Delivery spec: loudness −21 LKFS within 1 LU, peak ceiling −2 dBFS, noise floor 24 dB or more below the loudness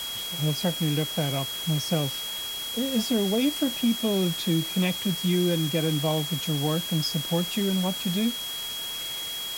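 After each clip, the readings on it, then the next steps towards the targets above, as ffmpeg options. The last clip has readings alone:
interfering tone 3,300 Hz; level of the tone −32 dBFS; background noise floor −33 dBFS; target noise floor −50 dBFS; integrated loudness −26.0 LKFS; sample peak −12.0 dBFS; target loudness −21.0 LKFS
→ -af "bandreject=frequency=3300:width=30"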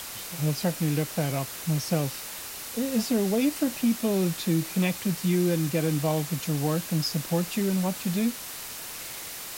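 interfering tone none found; background noise floor −38 dBFS; target noise floor −52 dBFS
→ -af "afftdn=noise_reduction=14:noise_floor=-38"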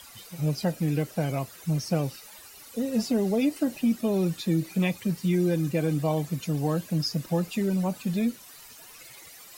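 background noise floor −48 dBFS; target noise floor −52 dBFS
→ -af "afftdn=noise_reduction=6:noise_floor=-48"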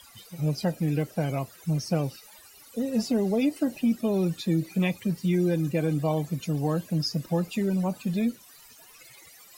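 background noise floor −52 dBFS; integrated loudness −27.5 LKFS; sample peak −13.5 dBFS; target loudness −21.0 LKFS
→ -af "volume=6.5dB"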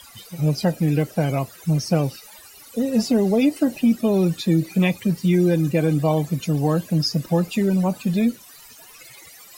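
integrated loudness −21.0 LKFS; sample peak −7.0 dBFS; background noise floor −46 dBFS

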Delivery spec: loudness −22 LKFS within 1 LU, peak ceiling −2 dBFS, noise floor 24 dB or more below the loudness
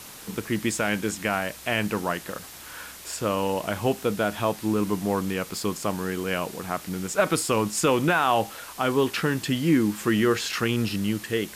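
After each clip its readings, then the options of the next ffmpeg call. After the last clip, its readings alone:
background noise floor −43 dBFS; target noise floor −50 dBFS; integrated loudness −25.5 LKFS; sample peak −9.5 dBFS; target loudness −22.0 LKFS
→ -af "afftdn=noise_reduction=7:noise_floor=-43"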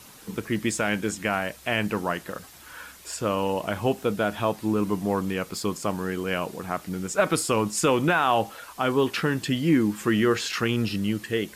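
background noise floor −48 dBFS; target noise floor −50 dBFS
→ -af "afftdn=noise_reduction=6:noise_floor=-48"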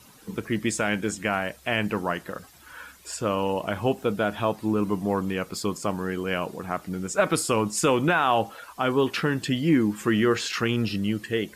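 background noise floor −52 dBFS; integrated loudness −25.5 LKFS; sample peak −9.5 dBFS; target loudness −22.0 LKFS
→ -af "volume=3.5dB"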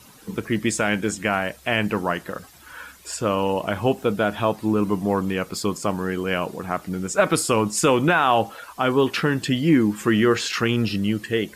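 integrated loudness −22.0 LKFS; sample peak −6.0 dBFS; background noise floor −48 dBFS

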